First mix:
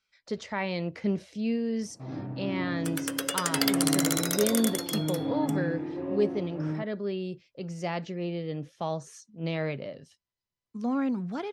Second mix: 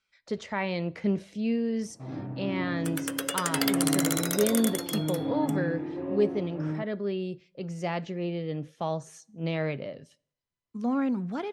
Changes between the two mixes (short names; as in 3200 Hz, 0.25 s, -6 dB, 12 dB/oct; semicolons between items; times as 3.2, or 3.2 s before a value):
speech: send on; master: add bell 5100 Hz -4 dB 0.75 oct